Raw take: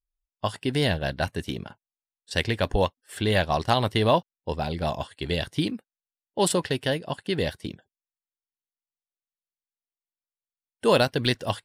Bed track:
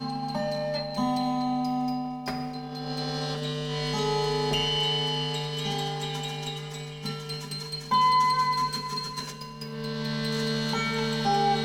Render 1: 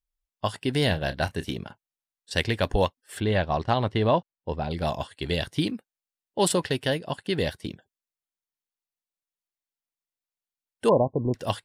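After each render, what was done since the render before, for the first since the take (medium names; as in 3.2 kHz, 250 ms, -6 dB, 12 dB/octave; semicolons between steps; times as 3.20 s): 0.84–1.53 s: doubling 32 ms -13 dB; 3.20–4.71 s: tape spacing loss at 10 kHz 20 dB; 10.89–11.34 s: brick-wall FIR low-pass 1.1 kHz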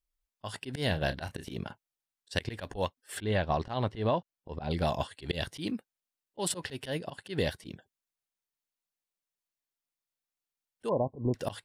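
compression 6:1, threshold -24 dBFS, peak gain reduction 9 dB; slow attack 108 ms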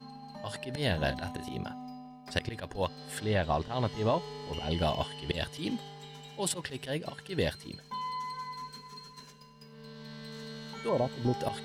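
add bed track -15.5 dB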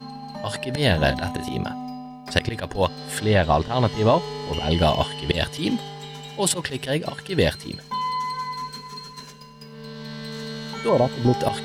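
trim +10.5 dB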